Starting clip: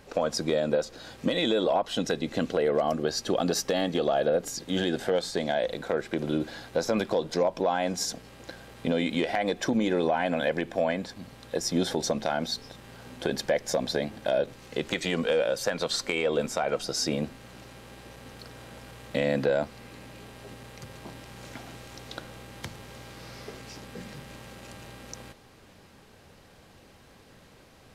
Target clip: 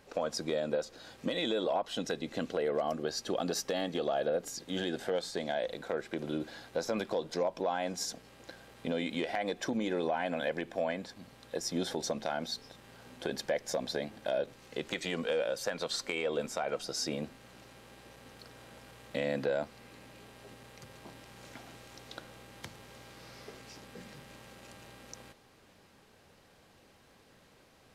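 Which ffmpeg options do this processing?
ffmpeg -i in.wav -af "lowshelf=frequency=170:gain=-5.5,volume=-6dB" out.wav

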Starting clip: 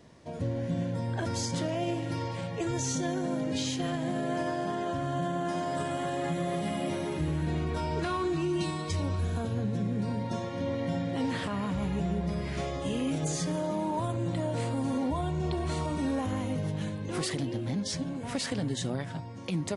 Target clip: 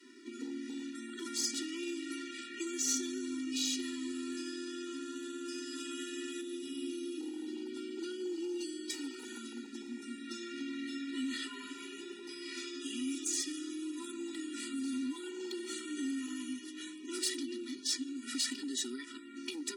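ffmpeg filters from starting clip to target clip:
ffmpeg -i in.wav -filter_complex "[0:a]asettb=1/sr,asplit=3[link_01][link_02][link_03];[link_01]atrim=end=6.414[link_04];[link_02]atrim=start=6.41:end=8.9,asetpts=PTS-STARTPTS,afade=type=in:duration=0.004:curve=qsin,afade=type=out:start_time=2.486:duration=0.004:curve=qsin,equalizer=frequency=250:width_type=o:width=1:gain=3,equalizer=frequency=1000:width_type=o:width=1:gain=-7,equalizer=frequency=2000:width_type=o:width=1:gain=-10,equalizer=frequency=8000:width_type=o:width=1:gain=-7[link_05];[link_03]atrim=start=8.896[link_06];[link_04][link_05]acrossfade=duration=0.004:curve1=hsin:curve2=qsin[link_07];[link_07][link_06]acrossfade=duration=0.004:curve1=qsin:curve2=hsin,acontrast=57,adynamicequalizer=threshold=0.0126:dfrequency=210:dqfactor=0.72:tfrequency=210:tqfactor=0.72:attack=5:release=100:ratio=0.375:range=2.5:mode=cutabove:tftype=bell,afftfilt=real='re*(1-between(b*sr/4096,400,1000))':imag='im*(1-between(b*sr/4096,400,1000))':win_size=4096:overlap=0.75,asoftclip=type=hard:threshold=-21.5dB,acrossover=split=210|3000[link_08][link_09][link_10];[link_09]acompressor=threshold=-42dB:ratio=6[link_11];[link_08][link_11][link_10]amix=inputs=3:normalize=0,afftfilt=real='re*eq(mod(floor(b*sr/1024/250),2),1)':imag='im*eq(mod(floor(b*sr/1024/250),2),1)':win_size=1024:overlap=0.75" out.wav

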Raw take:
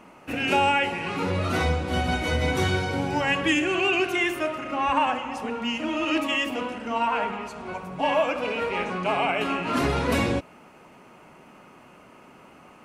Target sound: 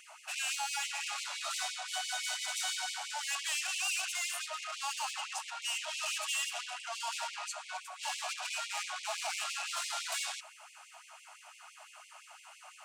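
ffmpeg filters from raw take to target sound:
ffmpeg -i in.wav -filter_complex "[0:a]asplit=2[link_01][link_02];[link_02]highpass=frequency=720:poles=1,volume=28dB,asoftclip=type=tanh:threshold=-9.5dB[link_03];[link_01][link_03]amix=inputs=2:normalize=0,lowpass=frequency=1500:poles=1,volume=-6dB,equalizer=frequency=125:width_type=o:width=1:gain=-6,equalizer=frequency=250:width_type=o:width=1:gain=10,equalizer=frequency=500:width_type=o:width=1:gain=-10,equalizer=frequency=1000:width_type=o:width=1:gain=-10,equalizer=frequency=2000:width_type=o:width=1:gain=-11,equalizer=frequency=8000:width_type=o:width=1:gain=12,afftfilt=real='re*gte(b*sr/1024,560*pow(2100/560,0.5+0.5*sin(2*PI*5.9*pts/sr)))':imag='im*gte(b*sr/1024,560*pow(2100/560,0.5+0.5*sin(2*PI*5.9*pts/sr)))':win_size=1024:overlap=0.75,volume=-7dB" out.wav

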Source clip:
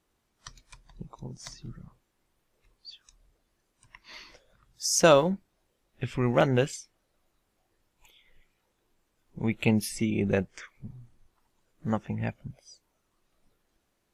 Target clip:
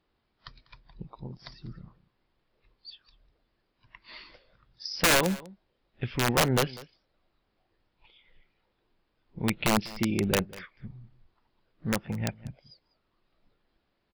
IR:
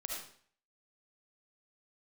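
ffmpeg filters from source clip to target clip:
-af "aresample=11025,aresample=44100,aeval=exprs='(mod(5.96*val(0)+1,2)-1)/5.96':channel_layout=same,aecho=1:1:196:0.1"

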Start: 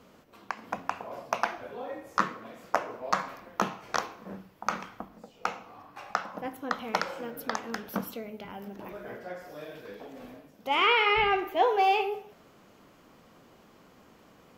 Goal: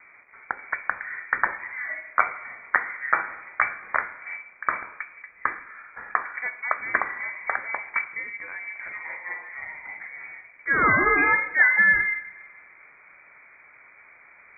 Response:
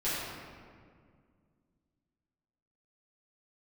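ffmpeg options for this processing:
-filter_complex "[0:a]acrusher=bits=9:mix=0:aa=0.000001,asplit=2[link_01][link_02];[1:a]atrim=start_sample=2205,asetrate=57330,aresample=44100,adelay=125[link_03];[link_02][link_03]afir=irnorm=-1:irlink=0,volume=-28.5dB[link_04];[link_01][link_04]amix=inputs=2:normalize=0,lowpass=frequency=2100:width_type=q:width=0.5098,lowpass=frequency=2100:width_type=q:width=0.6013,lowpass=frequency=2100:width_type=q:width=0.9,lowpass=frequency=2100:width_type=q:width=2.563,afreqshift=-2500,volume=5.5dB"

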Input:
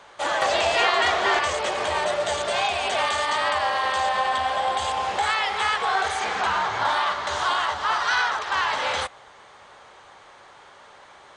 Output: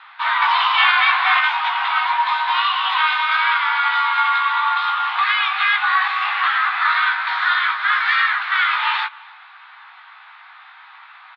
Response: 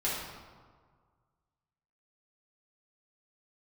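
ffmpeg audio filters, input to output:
-filter_complex "[0:a]highpass=frequency=390:width_type=q:width=0.5412,highpass=frequency=390:width_type=q:width=1.307,lowpass=frequency=3400:width_type=q:width=0.5176,lowpass=frequency=3400:width_type=q:width=0.7071,lowpass=frequency=3400:width_type=q:width=1.932,afreqshift=360,asplit=2[link_01][link_02];[link_02]adelay=17,volume=-5dB[link_03];[link_01][link_03]amix=inputs=2:normalize=0,asplit=2[link_04][link_05];[link_05]adelay=297.4,volume=-23dB,highshelf=frequency=4000:gain=-6.69[link_06];[link_04][link_06]amix=inputs=2:normalize=0,volume=4.5dB"

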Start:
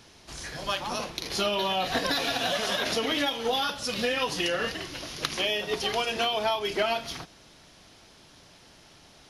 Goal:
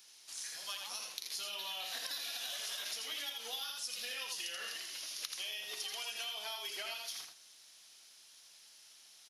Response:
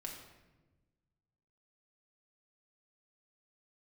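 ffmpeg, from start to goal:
-filter_complex "[0:a]aderivative,asplit=2[link_01][link_02];[link_02]aecho=0:1:82:0.562[link_03];[link_01][link_03]amix=inputs=2:normalize=0,acompressor=threshold=-38dB:ratio=6"

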